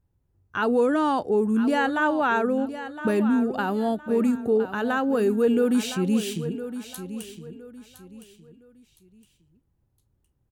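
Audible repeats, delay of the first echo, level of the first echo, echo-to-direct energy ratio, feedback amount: 3, 1.013 s, -12.0 dB, -11.5 dB, 30%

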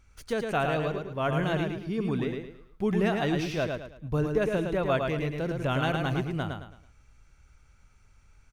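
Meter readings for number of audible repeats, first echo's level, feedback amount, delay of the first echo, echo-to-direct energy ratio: 4, -4.5 dB, 34%, 0.109 s, -4.0 dB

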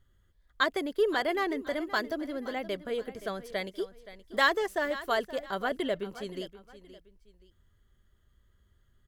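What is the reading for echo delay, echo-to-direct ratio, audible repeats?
0.523 s, -15.0 dB, 2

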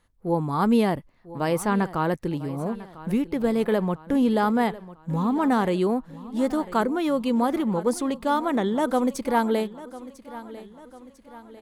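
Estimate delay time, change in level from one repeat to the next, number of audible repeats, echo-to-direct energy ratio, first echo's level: 0.998 s, -6.5 dB, 3, -16.0 dB, -17.0 dB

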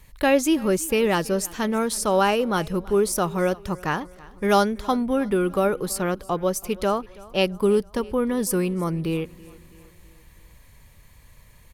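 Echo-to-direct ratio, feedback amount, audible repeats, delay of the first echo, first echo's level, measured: -20.5 dB, 51%, 3, 0.328 s, -22.0 dB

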